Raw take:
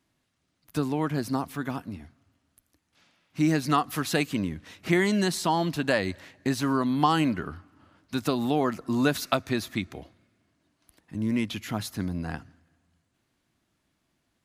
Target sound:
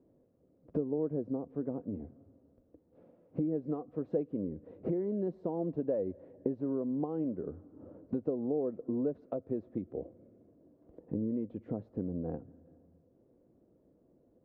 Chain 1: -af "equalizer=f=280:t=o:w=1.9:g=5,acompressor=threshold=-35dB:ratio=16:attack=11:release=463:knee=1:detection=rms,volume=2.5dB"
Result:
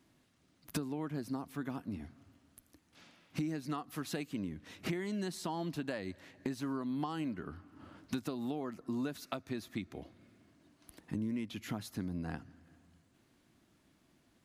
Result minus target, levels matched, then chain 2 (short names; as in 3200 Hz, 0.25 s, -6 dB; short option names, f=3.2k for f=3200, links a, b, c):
500 Hz band -5.5 dB
-af "equalizer=f=280:t=o:w=1.9:g=5,acompressor=threshold=-35dB:ratio=16:attack=11:release=463:knee=1:detection=rms,lowpass=f=500:t=q:w=5.4,volume=2.5dB"